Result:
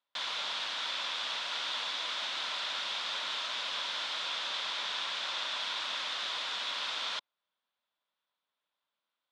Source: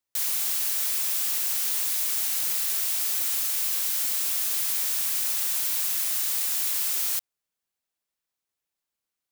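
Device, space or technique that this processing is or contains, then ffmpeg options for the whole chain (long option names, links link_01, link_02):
kitchen radio: -filter_complex "[0:a]highpass=200,equalizer=frequency=380:width_type=q:width=4:gain=-6,equalizer=frequency=590:width_type=q:width=4:gain=6,equalizer=frequency=1000:width_type=q:width=4:gain=9,equalizer=frequency=1400:width_type=q:width=4:gain=6,equalizer=frequency=3500:width_type=q:width=4:gain=9,lowpass=frequency=4100:width=0.5412,lowpass=frequency=4100:width=1.3066,asettb=1/sr,asplit=3[link_01][link_02][link_03];[link_01]atrim=end=4.264[link_04];[link_02]atrim=start=4.26:end=5.6,asetpts=PTS-STARTPTS,afade=type=in:duration=0.004:curve=qsin,afade=type=out:start_time=1.336:duration=0.004:curve=qsin,lowpass=12000[link_05];[link_03]atrim=start=5.596[link_06];[link_04][link_05]acrossfade=duration=0.004:curve1=hsin:curve2=qsin[link_07];[link_07][link_06]acrossfade=duration=0.004:curve1=qsin:curve2=hsin"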